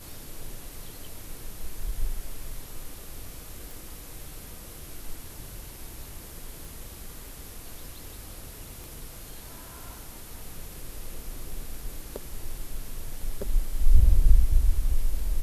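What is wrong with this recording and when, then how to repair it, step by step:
0:03.71: click
0:06.65: click
0:08.84: click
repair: click removal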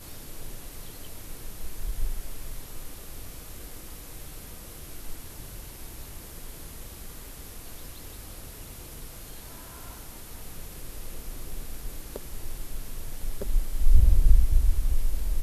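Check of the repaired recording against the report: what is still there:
none of them is left

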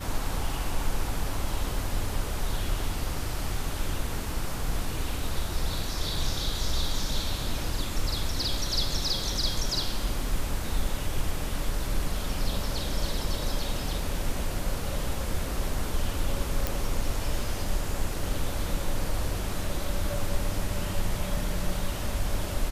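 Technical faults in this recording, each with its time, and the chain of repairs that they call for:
0:16.67: click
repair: click removal

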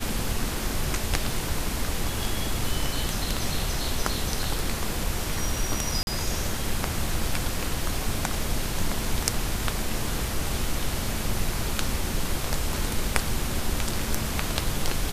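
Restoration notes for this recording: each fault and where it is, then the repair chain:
0:06.03–0:06.07: drop-out 41 ms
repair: repair the gap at 0:06.03, 41 ms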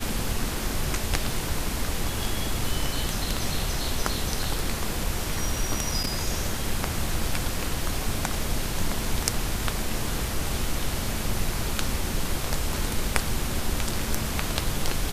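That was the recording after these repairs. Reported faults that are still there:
none of them is left

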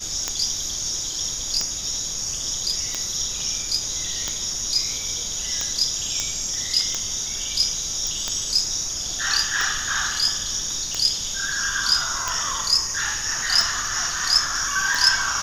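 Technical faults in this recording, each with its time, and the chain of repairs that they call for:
scratch tick 45 rpm −9 dBFS
0:06.20: click −10 dBFS
0:08.07: click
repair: click removal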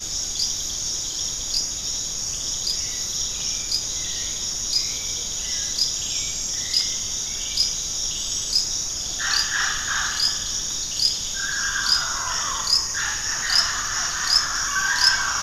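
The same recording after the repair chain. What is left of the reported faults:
none of them is left

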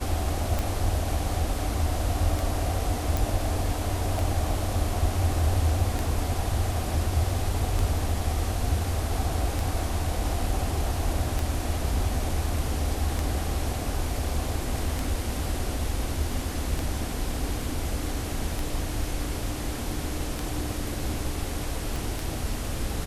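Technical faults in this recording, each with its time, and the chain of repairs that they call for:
scratch tick 33 1/3 rpm
0:03.17: click
0:21.96: click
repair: click removal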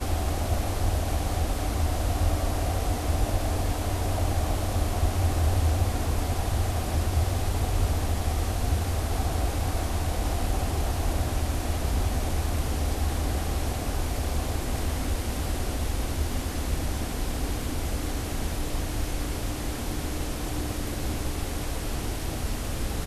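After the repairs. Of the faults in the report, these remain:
0:21.96: click

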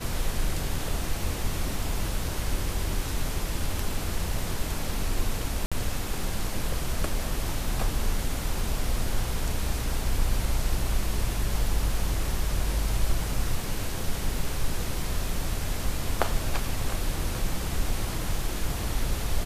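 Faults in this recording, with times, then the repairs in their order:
0:05.66–0:05.72: drop-out 56 ms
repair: repair the gap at 0:05.66, 56 ms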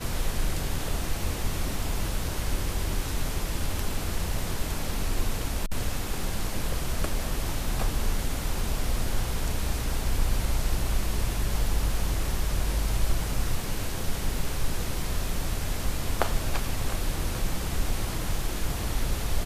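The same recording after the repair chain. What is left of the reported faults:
none of them is left

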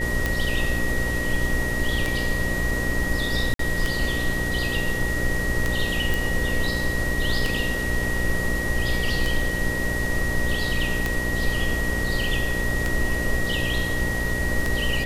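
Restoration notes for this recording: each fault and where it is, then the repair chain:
mains buzz 60 Hz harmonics 10 −29 dBFS
scratch tick 33 1/3 rpm −9 dBFS
whistle 1,900 Hz −27 dBFS
0:03.54–0:03.59: drop-out 53 ms
0:06.14: click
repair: click removal
hum removal 60 Hz, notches 10
notch filter 1,900 Hz, Q 30
repair the gap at 0:03.54, 53 ms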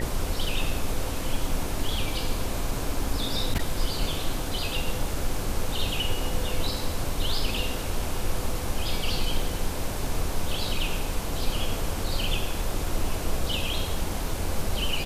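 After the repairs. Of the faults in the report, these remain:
none of them is left

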